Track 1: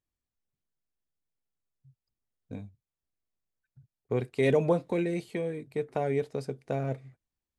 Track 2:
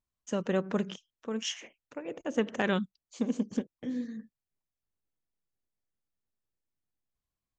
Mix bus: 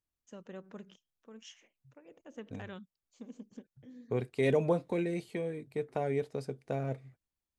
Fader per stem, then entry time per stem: −3.5, −17.5 decibels; 0.00, 0.00 seconds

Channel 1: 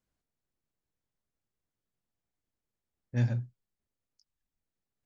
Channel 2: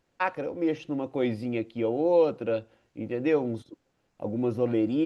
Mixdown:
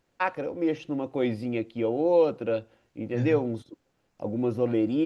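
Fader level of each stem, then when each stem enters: −3.0, +0.5 decibels; 0.00, 0.00 seconds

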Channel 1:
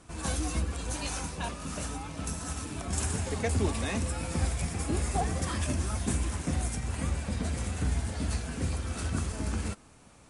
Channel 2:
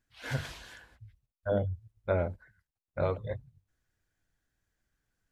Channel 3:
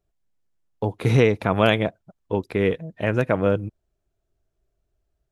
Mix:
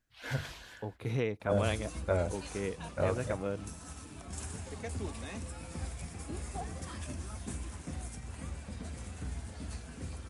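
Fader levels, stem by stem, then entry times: −10.5, −1.5, −15.5 decibels; 1.40, 0.00, 0.00 seconds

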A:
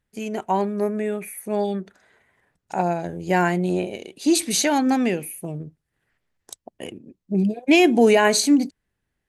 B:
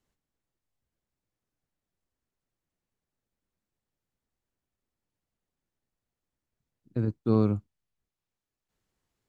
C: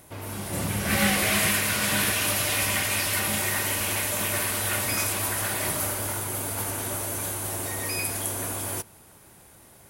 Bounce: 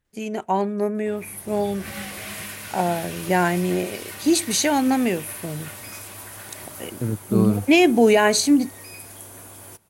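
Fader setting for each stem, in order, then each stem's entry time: 0.0, +2.5, −11.0 decibels; 0.00, 0.05, 0.95 seconds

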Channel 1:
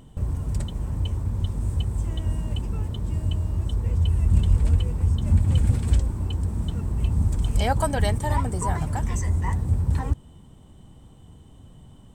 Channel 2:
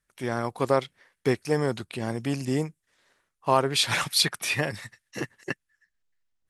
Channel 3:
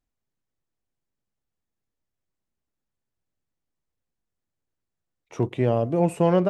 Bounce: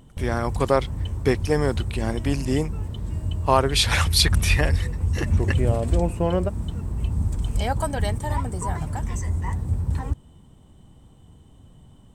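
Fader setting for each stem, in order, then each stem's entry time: −2.0, +3.0, −3.5 decibels; 0.00, 0.00, 0.00 seconds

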